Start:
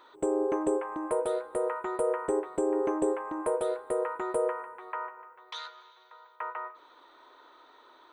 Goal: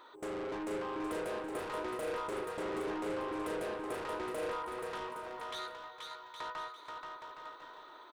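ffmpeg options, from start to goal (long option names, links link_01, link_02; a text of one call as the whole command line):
ffmpeg -i in.wav -filter_complex "[0:a]asettb=1/sr,asplit=3[link_01][link_02][link_03];[link_01]atrim=end=2.414[link_04];[link_02]atrim=start=2.41:end=3.4,asetpts=PTS-STARTPTS,afade=type=in:duration=0.004:curve=qsin,afade=type=out:start_time=0.986:duration=0.004:curve=qsin,lowpass=7100[link_05];[link_03]atrim=start=3.396[link_06];[link_04][link_05]acrossfade=duration=0.004:curve1=hsin:curve2=qsin[link_07];[link_07][link_06]acrossfade=duration=0.004:curve1=qsin:curve2=hsin,asoftclip=type=tanh:threshold=-37.5dB,aecho=1:1:480|816|1051|1216|1331:0.631|0.398|0.251|0.158|0.1" out.wav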